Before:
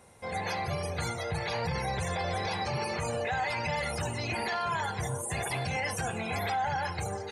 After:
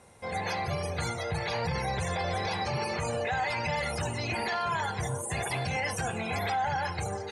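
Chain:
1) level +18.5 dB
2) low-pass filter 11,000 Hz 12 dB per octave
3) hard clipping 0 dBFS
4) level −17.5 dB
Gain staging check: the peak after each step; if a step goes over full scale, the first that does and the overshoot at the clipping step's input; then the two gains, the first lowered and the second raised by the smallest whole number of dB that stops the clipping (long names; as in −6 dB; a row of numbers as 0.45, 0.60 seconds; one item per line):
−2.5, −2.5, −2.5, −20.0 dBFS
no step passes full scale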